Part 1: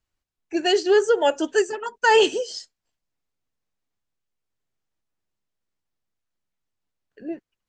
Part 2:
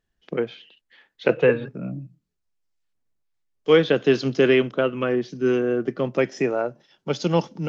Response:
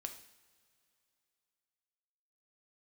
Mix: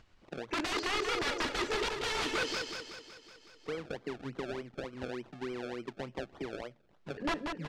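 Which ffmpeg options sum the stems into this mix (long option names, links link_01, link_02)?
-filter_complex "[0:a]acompressor=threshold=-24dB:ratio=12,aeval=exprs='(mod(25.1*val(0)+1,2)-1)/25.1':channel_layout=same,volume=0dB,asplit=4[link_01][link_02][link_03][link_04];[link_02]volume=-10dB[link_05];[link_03]volume=-3.5dB[link_06];[1:a]acompressor=threshold=-23dB:ratio=6,acrusher=samples=31:mix=1:aa=0.000001:lfo=1:lforange=31:lforate=3.4,volume=-12.5dB[link_07];[link_04]apad=whole_len=338924[link_08];[link_07][link_08]sidechaincompress=threshold=-52dB:ratio=4:attack=12:release=159[link_09];[2:a]atrim=start_sample=2205[link_10];[link_05][link_10]afir=irnorm=-1:irlink=0[link_11];[link_06]aecho=0:1:186|372|558|744|930|1116|1302|1488:1|0.52|0.27|0.141|0.0731|0.038|0.0198|0.0103[link_12];[link_01][link_09][link_11][link_12]amix=inputs=4:normalize=0,lowpass=4100,acompressor=mode=upward:threshold=-48dB:ratio=2.5"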